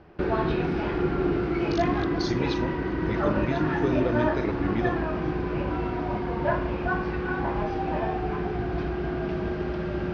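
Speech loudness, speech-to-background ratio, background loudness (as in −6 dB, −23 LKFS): −32.0 LKFS, −4.5 dB, −27.5 LKFS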